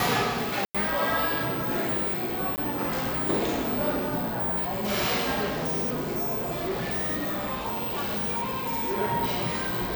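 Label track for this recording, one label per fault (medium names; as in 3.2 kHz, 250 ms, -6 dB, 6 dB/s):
0.650000	0.750000	dropout 96 ms
2.560000	2.580000	dropout 18 ms
5.490000	8.960000	clipped -24.5 dBFS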